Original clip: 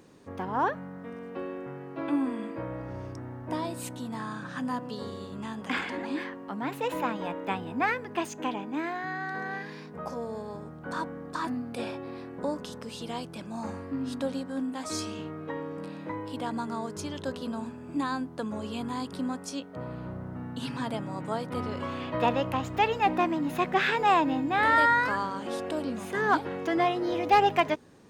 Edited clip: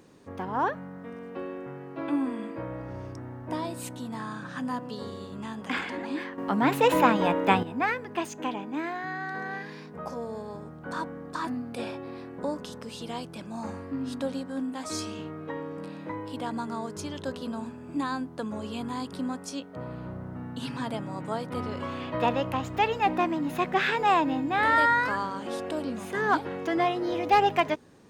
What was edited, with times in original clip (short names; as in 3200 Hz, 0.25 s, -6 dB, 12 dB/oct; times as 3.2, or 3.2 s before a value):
6.38–7.63 gain +9.5 dB